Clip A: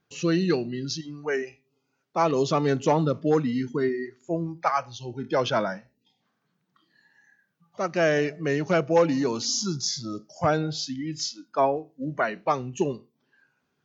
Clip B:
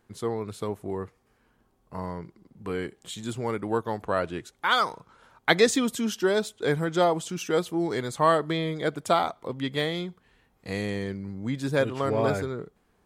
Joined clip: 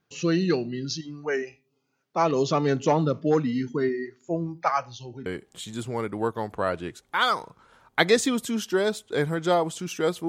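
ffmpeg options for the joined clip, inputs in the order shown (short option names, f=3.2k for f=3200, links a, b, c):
-filter_complex "[0:a]asettb=1/sr,asplit=3[a][b][c];[a]atrim=end=4.814[d];[b]atrim=start=4.81:end=5.26,asetpts=PTS-STARTPTS,afade=t=in:d=0.004:c=qsin,afade=t=out:st=0.446:d=0.004:c=qsin,acompressor=threshold=-38dB:ratio=2:attack=3.2:release=140:knee=1:detection=peak[e];[c]atrim=start=5.256[f];[d][e]acrossfade=d=0.004:c1=hsin:c2=qsin[g];[g][f]acrossfade=d=0.004:c1=qsin:c2=hsin,apad=whole_dur=10.28,atrim=end=10.28,atrim=end=5.262[h];[1:a]atrim=start=2.758:end=7.78[i];[h][i]acrossfade=d=0.004:c1=hsin:c2=hsin"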